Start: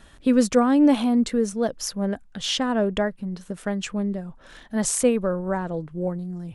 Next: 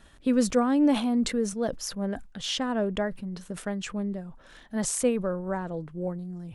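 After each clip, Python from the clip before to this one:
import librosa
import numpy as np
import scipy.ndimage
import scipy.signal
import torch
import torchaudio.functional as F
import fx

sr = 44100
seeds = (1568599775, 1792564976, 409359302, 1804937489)

y = fx.sustainer(x, sr, db_per_s=120.0)
y = F.gain(torch.from_numpy(y), -5.0).numpy()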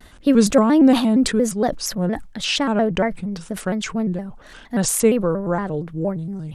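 y = fx.vibrato_shape(x, sr, shape='square', rate_hz=4.3, depth_cents=160.0)
y = F.gain(torch.from_numpy(y), 8.5).numpy()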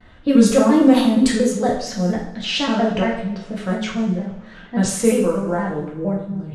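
y = fx.rev_double_slope(x, sr, seeds[0], early_s=0.63, late_s=2.3, knee_db=-20, drr_db=-4.0)
y = fx.env_lowpass(y, sr, base_hz=2800.0, full_db=-5.5)
y = F.gain(torch.from_numpy(y), -4.5).numpy()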